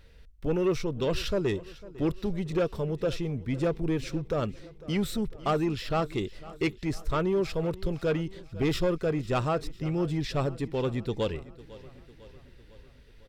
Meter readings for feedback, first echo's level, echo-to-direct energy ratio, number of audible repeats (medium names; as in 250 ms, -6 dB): 57%, -19.0 dB, -17.5 dB, 4